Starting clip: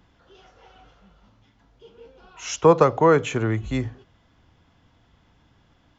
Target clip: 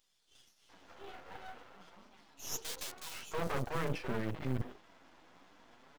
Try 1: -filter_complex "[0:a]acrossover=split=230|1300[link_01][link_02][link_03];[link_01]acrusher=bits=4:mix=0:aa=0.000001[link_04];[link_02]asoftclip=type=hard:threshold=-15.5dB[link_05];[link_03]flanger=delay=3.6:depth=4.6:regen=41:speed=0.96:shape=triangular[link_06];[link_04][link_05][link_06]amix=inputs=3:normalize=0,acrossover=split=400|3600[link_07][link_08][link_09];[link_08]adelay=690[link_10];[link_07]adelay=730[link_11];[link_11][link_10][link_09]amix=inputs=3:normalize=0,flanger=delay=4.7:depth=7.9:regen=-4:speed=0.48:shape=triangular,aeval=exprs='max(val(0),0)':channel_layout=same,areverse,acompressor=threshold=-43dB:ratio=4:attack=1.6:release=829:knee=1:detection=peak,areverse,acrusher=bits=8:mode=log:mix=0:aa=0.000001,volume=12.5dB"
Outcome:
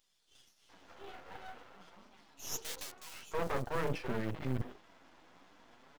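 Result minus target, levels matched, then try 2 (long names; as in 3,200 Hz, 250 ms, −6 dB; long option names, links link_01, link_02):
hard clipping: distortion −6 dB
-filter_complex "[0:a]acrossover=split=230|1300[link_01][link_02][link_03];[link_01]acrusher=bits=4:mix=0:aa=0.000001[link_04];[link_02]asoftclip=type=hard:threshold=-23dB[link_05];[link_03]flanger=delay=3.6:depth=4.6:regen=41:speed=0.96:shape=triangular[link_06];[link_04][link_05][link_06]amix=inputs=3:normalize=0,acrossover=split=400|3600[link_07][link_08][link_09];[link_08]adelay=690[link_10];[link_07]adelay=730[link_11];[link_11][link_10][link_09]amix=inputs=3:normalize=0,flanger=delay=4.7:depth=7.9:regen=-4:speed=0.48:shape=triangular,aeval=exprs='max(val(0),0)':channel_layout=same,areverse,acompressor=threshold=-43dB:ratio=4:attack=1.6:release=829:knee=1:detection=peak,areverse,acrusher=bits=8:mode=log:mix=0:aa=0.000001,volume=12.5dB"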